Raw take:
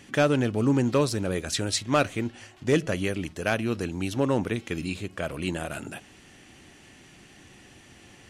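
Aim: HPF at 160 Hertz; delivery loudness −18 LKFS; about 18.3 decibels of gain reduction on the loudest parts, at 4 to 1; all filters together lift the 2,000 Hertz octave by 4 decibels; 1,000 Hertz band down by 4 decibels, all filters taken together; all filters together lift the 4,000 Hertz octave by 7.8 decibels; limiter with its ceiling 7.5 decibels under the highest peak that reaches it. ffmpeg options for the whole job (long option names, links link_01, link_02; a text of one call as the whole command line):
ffmpeg -i in.wav -af "highpass=160,equalizer=frequency=1000:width_type=o:gain=-8.5,equalizer=frequency=2000:width_type=o:gain=5.5,equalizer=frequency=4000:width_type=o:gain=8.5,acompressor=threshold=-40dB:ratio=4,volume=25dB,alimiter=limit=-4.5dB:level=0:latency=1" out.wav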